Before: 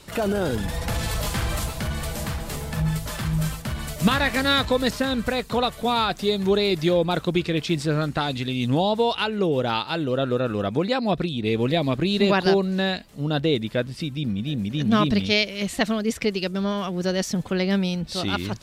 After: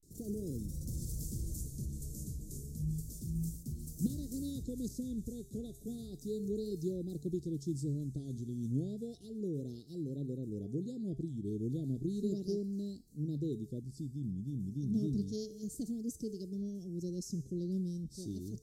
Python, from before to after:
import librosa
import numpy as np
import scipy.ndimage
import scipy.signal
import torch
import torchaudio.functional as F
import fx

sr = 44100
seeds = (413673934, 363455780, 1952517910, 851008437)

y = fx.comb_fb(x, sr, f0_hz=140.0, decay_s=0.71, harmonics='odd', damping=0.0, mix_pct=70)
y = fx.vibrato(y, sr, rate_hz=0.33, depth_cents=94.0)
y = scipy.signal.sosfilt(scipy.signal.ellip(3, 1.0, 50, [350.0, 6200.0], 'bandstop', fs=sr, output='sos'), y)
y = y * librosa.db_to_amplitude(-2.0)